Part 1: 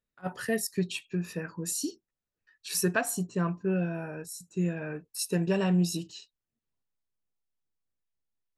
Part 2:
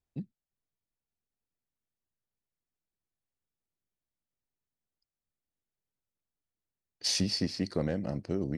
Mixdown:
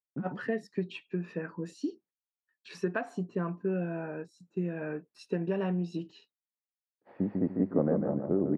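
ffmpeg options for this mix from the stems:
ffmpeg -i stem1.wav -i stem2.wav -filter_complex "[0:a]highshelf=frequency=9500:gain=-11,acompressor=threshold=-28dB:ratio=4,volume=-1dB,asplit=2[link_01][link_02];[1:a]lowpass=frequency=1300:width=0.5412,lowpass=frequency=1300:width=1.3066,volume=2dB,asplit=2[link_03][link_04];[link_04]volume=-6dB[link_05];[link_02]apad=whole_len=378173[link_06];[link_03][link_06]sidechaincompress=threshold=-47dB:ratio=8:attack=22:release=1310[link_07];[link_05]aecho=0:1:148|296|444|592|740:1|0.32|0.102|0.0328|0.0105[link_08];[link_01][link_07][link_08]amix=inputs=3:normalize=0,agate=range=-33dB:threshold=-54dB:ratio=3:detection=peak,highpass=240,lowpass=2400,lowshelf=frequency=430:gain=7" out.wav

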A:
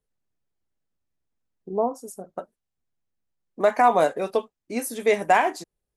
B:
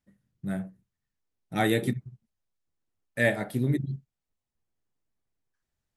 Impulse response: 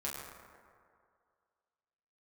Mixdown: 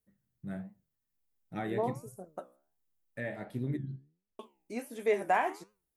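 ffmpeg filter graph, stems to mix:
-filter_complex "[0:a]aemphasis=mode=production:type=50fm,volume=-4.5dB,asplit=3[link_01][link_02][link_03];[link_01]atrim=end=3.45,asetpts=PTS-STARTPTS,afade=type=out:start_time=3.446:duration=0.004:curve=hsin[link_04];[link_02]atrim=start=3.45:end=4.39,asetpts=PTS-STARTPTS,volume=0[link_05];[link_03]atrim=start=4.39,asetpts=PTS-STARTPTS,afade=type=in:duration=0.004:curve=hsin[link_06];[link_04][link_05][link_06]concat=n=3:v=0:a=1[link_07];[1:a]highshelf=frequency=5000:gain=-11,alimiter=limit=-17dB:level=0:latency=1:release=213,volume=-3dB[link_08];[link_07][link_08]amix=inputs=2:normalize=0,acrossover=split=2600[link_09][link_10];[link_10]acompressor=threshold=-50dB:ratio=4:attack=1:release=60[link_11];[link_09][link_11]amix=inputs=2:normalize=0,flanger=delay=9.2:depth=7.3:regen=81:speed=1.4:shape=triangular"

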